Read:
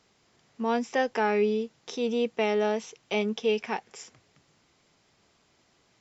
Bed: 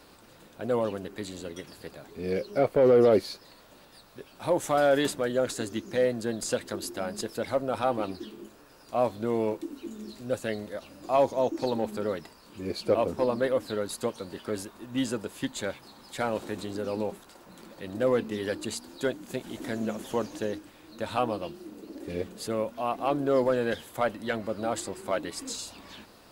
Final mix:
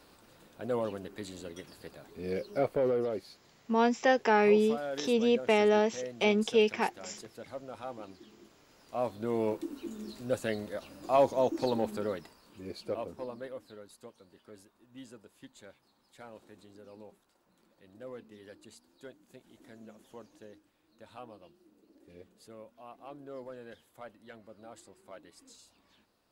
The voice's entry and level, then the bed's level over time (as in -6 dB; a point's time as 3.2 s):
3.10 s, +1.0 dB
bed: 2.7 s -5 dB
3.14 s -14.5 dB
8.23 s -14.5 dB
9.57 s -1.5 dB
11.82 s -1.5 dB
13.94 s -20 dB